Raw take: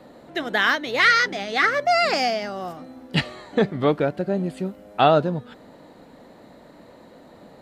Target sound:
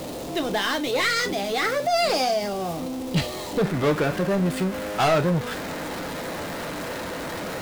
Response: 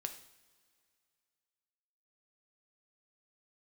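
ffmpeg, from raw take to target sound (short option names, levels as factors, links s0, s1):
-filter_complex "[0:a]aeval=exprs='val(0)+0.5*0.0299*sgn(val(0))':c=same,asetnsamples=n=441:p=0,asendcmd='3.65 equalizer g 4.5',equalizer=f=1600:t=o:w=1.1:g=-10,asoftclip=type=tanh:threshold=0.112[s0];[1:a]atrim=start_sample=2205,atrim=end_sample=3528,asetrate=61740,aresample=44100[s1];[s0][s1]afir=irnorm=-1:irlink=0,volume=2.37"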